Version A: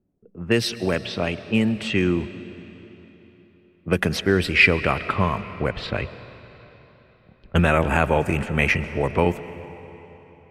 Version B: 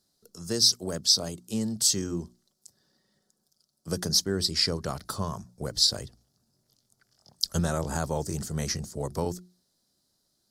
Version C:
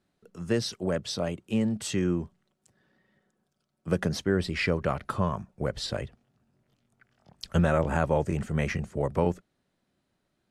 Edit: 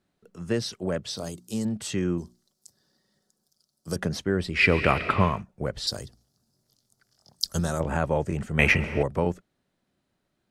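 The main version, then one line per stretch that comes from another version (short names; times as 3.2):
C
1.17–1.65 from B
2.18–3.96 from B
4.65–5.32 from A, crossfade 0.24 s
5.87–7.8 from B
8.59–9.03 from A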